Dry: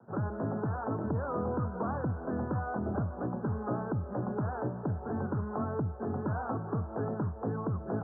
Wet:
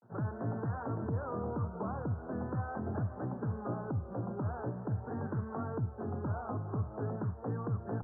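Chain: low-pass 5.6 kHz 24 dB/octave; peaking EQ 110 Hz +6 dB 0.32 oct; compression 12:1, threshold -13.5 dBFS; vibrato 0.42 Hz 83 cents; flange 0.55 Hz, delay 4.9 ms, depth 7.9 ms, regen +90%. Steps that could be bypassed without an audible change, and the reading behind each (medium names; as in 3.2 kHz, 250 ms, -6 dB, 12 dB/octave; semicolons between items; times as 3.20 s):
low-pass 5.6 kHz: input has nothing above 1.6 kHz; compression, threshold -13.5 dBFS: peak at its input -20.0 dBFS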